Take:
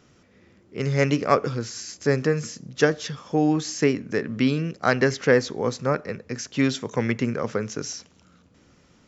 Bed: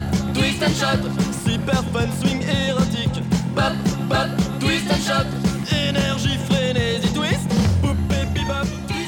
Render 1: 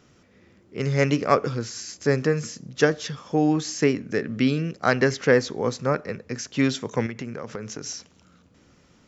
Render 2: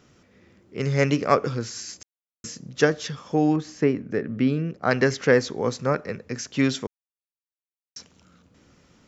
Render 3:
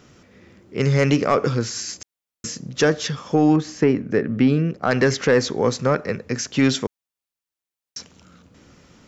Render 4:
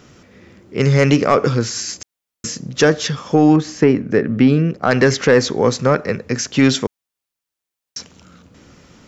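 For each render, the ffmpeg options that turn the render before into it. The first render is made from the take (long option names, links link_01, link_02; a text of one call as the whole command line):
ffmpeg -i in.wav -filter_complex "[0:a]asettb=1/sr,asplit=3[link_01][link_02][link_03];[link_01]atrim=end=4.064[link_04];[link_02]atrim=start=4.06:end=4.68,asetpts=PTS-STARTPTS,afade=type=in:duration=0.004:curve=qsin,afade=type=out:start_time=0.616:duration=0.004:curve=qsin,equalizer=frequency=1000:width=6.2:gain=-9.5[link_05];[link_03]atrim=start=4.676[link_06];[link_04][link_05]acrossfade=duration=0.004:curve1=hsin:curve2=qsin[link_07];[link_07][link_06]acrossfade=duration=0.004:curve1=qsin:curve2=hsin,asettb=1/sr,asplit=3[link_08][link_09][link_10];[link_08]atrim=end=7.064[link_11];[link_09]atrim=start=7.06:end=7.86,asetpts=PTS-STARTPTS,afade=type=in:duration=0.004:curve=qsin,afade=type=out:start_time=0.796:duration=0.004:curve=qsin,acompressor=threshold=-30dB:ratio=4:attack=3.2:release=140:knee=1:detection=peak[link_12];[link_10]atrim=start=7.856[link_13];[link_11][link_12]acrossfade=duration=0.004:curve1=hsin:curve2=qsin[link_14];[link_14][link_13]acrossfade=duration=0.004:curve1=qsin:curve2=hsin" out.wav
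ffmpeg -i in.wav -filter_complex "[0:a]asettb=1/sr,asplit=3[link_01][link_02][link_03];[link_01]atrim=end=3.564[link_04];[link_02]atrim=start=3.56:end=4.91,asetpts=PTS-STARTPTS,afade=type=in:duration=0.004:curve=qsin,afade=type=out:start_time=1.346:duration=0.004:curve=qsin,lowpass=frequency=1300:poles=1[link_05];[link_03]atrim=start=4.906[link_06];[link_04][link_05]acrossfade=duration=0.004:curve1=hsin:curve2=qsin[link_07];[link_07][link_06]acrossfade=duration=0.004:curve1=qsin:curve2=hsin,asplit=5[link_08][link_09][link_10][link_11][link_12];[link_08]atrim=end=2.03,asetpts=PTS-STARTPTS,afade=type=out:start_time=2.026:duration=0.004:curve=hsin[link_13];[link_09]atrim=start=2.03:end=2.44,asetpts=PTS-STARTPTS,volume=0[link_14];[link_10]atrim=start=2.44:end=6.87,asetpts=PTS-STARTPTS,afade=type=in:duration=0.004:curve=hsin,afade=type=out:start_time=4.426:duration=0.004:curve=hsin[link_15];[link_11]atrim=start=6.87:end=7.96,asetpts=PTS-STARTPTS,volume=0[link_16];[link_12]atrim=start=7.96,asetpts=PTS-STARTPTS,afade=type=in:duration=0.004:curve=hsin[link_17];[link_13][link_14][link_15][link_16][link_17]concat=n=5:v=0:a=1" out.wav
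ffmpeg -i in.wav -af "acontrast=62,alimiter=limit=-7.5dB:level=0:latency=1:release=53" out.wav
ffmpeg -i in.wav -af "volume=4.5dB" out.wav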